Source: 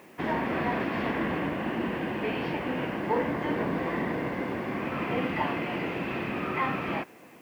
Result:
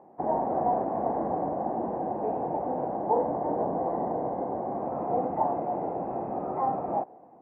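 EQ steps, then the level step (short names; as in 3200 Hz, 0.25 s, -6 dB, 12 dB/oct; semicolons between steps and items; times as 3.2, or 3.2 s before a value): ladder low-pass 850 Hz, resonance 70%; dynamic EQ 550 Hz, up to +5 dB, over -50 dBFS, Q 1.2; +5.5 dB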